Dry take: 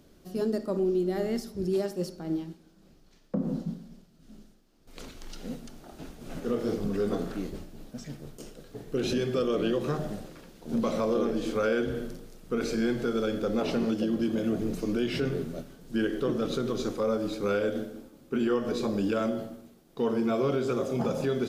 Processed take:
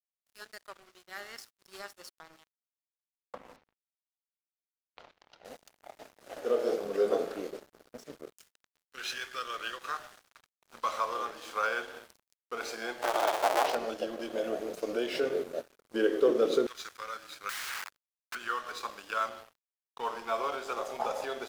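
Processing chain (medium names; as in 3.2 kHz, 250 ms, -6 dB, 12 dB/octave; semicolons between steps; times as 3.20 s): 13.02–13.75 s: cycle switcher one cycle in 2, inverted; 17.49–18.35 s: integer overflow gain 33 dB; LFO high-pass saw down 0.12 Hz 410–1700 Hz; crossover distortion -47 dBFS; 3.56–5.45 s: distance through air 240 m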